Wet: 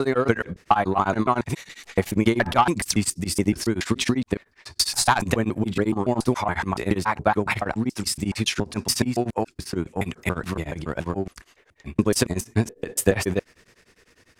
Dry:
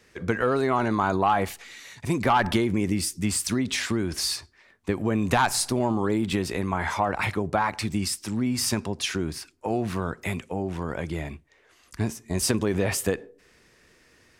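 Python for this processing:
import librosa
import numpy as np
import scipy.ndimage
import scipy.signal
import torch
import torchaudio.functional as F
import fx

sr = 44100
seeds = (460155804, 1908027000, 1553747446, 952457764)

y = fx.block_reorder(x, sr, ms=141.0, group=5)
y = fx.transient(y, sr, attack_db=6, sustain_db=2)
y = y * np.abs(np.cos(np.pi * 10.0 * np.arange(len(y)) / sr))
y = y * librosa.db_to_amplitude(3.5)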